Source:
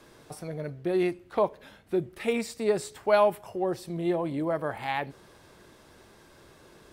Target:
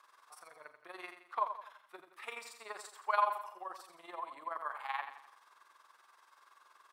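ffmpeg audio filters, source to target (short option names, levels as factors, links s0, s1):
-af "highpass=f=1100:t=q:w=4.9,tremolo=f=21:d=0.71,aecho=1:1:85|170|255|340|425:0.355|0.153|0.0656|0.0282|0.0121,volume=0.355"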